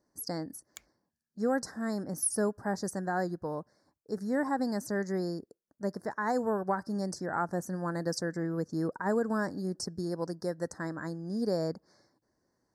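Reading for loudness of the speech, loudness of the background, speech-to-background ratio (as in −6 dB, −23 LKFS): −33.5 LKFS, −53.0 LKFS, 19.5 dB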